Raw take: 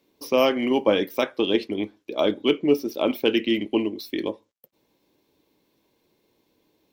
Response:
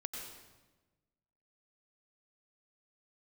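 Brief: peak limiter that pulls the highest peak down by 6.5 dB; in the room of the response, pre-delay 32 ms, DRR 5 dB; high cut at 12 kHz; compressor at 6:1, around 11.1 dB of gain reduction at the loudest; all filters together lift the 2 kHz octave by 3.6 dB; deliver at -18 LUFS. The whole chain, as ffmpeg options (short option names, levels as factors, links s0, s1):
-filter_complex "[0:a]lowpass=12000,equalizer=f=2000:t=o:g=4.5,acompressor=threshold=0.0501:ratio=6,alimiter=limit=0.112:level=0:latency=1,asplit=2[s0][s1];[1:a]atrim=start_sample=2205,adelay=32[s2];[s1][s2]afir=irnorm=-1:irlink=0,volume=0.596[s3];[s0][s3]amix=inputs=2:normalize=0,volume=4.73"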